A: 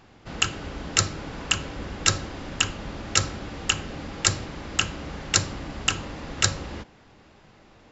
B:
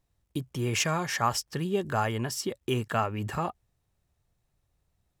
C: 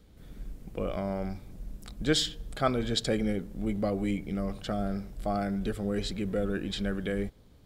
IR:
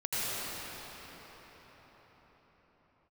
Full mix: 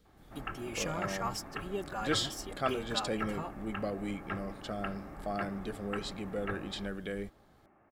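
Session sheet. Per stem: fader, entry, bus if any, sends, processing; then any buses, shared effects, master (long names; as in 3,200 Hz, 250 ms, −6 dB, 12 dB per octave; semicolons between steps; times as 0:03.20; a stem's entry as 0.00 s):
−5.0 dB, 0.05 s, no send, Bessel low-pass filter 1,200 Hz, order 8; spectral tilt +1.5 dB per octave; notch comb filter 490 Hz
−6.0 dB, 0.00 s, no send, barber-pole flanger 3.8 ms −0.9 Hz
−4.5 dB, 0.00 s, no send, no processing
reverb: not used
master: low-shelf EQ 250 Hz −6 dB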